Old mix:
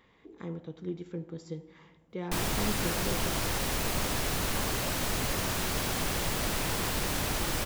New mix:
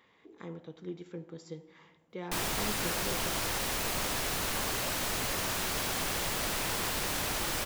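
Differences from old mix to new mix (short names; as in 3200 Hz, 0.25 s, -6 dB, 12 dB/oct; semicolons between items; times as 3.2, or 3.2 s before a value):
speech: add HPF 80 Hz; master: add low shelf 340 Hz -7.5 dB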